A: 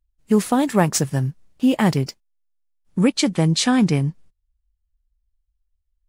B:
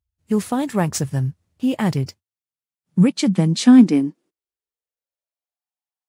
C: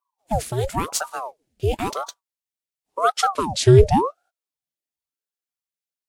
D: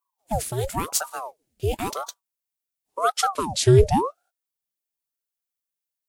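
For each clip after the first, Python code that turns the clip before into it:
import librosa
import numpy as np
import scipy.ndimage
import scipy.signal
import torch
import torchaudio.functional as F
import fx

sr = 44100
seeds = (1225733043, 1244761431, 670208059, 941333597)

y1 = fx.filter_sweep_highpass(x, sr, from_hz=87.0, to_hz=770.0, start_s=2.05, end_s=5.69, q=5.2)
y1 = y1 * 10.0 ** (-4.0 / 20.0)
y2 = fx.fixed_phaser(y1, sr, hz=380.0, stages=4)
y2 = fx.ring_lfo(y2, sr, carrier_hz=600.0, swing_pct=80, hz=0.94)
y2 = y2 * 10.0 ** (4.0 / 20.0)
y3 = fx.high_shelf(y2, sr, hz=8500.0, db=10.5)
y3 = y3 * 10.0 ** (-3.0 / 20.0)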